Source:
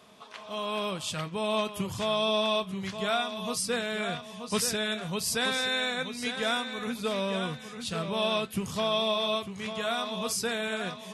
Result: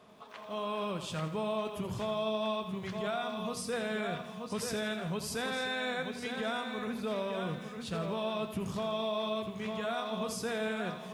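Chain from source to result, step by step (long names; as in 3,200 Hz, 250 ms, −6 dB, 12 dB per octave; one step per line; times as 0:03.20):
high-shelf EQ 2,200 Hz −11 dB
hum removal 48.47 Hz, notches 5
brickwall limiter −26.5 dBFS, peak gain reduction 8 dB
feedback echo at a low word length 83 ms, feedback 55%, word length 10 bits, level −10.5 dB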